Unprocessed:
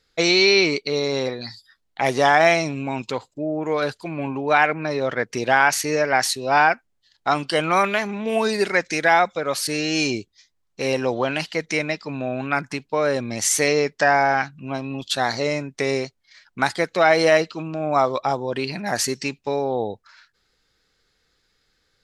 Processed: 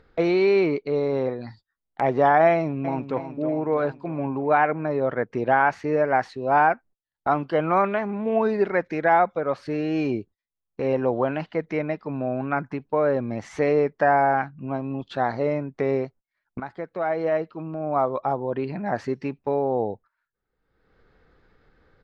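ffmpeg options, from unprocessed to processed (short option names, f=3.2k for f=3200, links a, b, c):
-filter_complex "[0:a]asplit=2[a][b];[b]afade=t=in:st=2.52:d=0.01,afade=t=out:st=3.16:d=0.01,aecho=0:1:320|640|960|1280|1600|1920|2240:0.316228|0.189737|0.113842|0.0683052|0.0409831|0.0245899|0.0147539[c];[a][c]amix=inputs=2:normalize=0,asplit=2[d][e];[d]atrim=end=16.6,asetpts=PTS-STARTPTS,afade=t=out:st=16.596:d=0.004:c=hsin:silence=0.223872[f];[e]atrim=start=16.6,asetpts=PTS-STARTPTS,afade=t=in:d=2.17:silence=0.223872[g];[f][g]concat=n=2:v=0:a=1,agate=range=-28dB:threshold=-43dB:ratio=16:detection=peak,lowpass=1.2k,acompressor=mode=upward:threshold=-28dB:ratio=2.5"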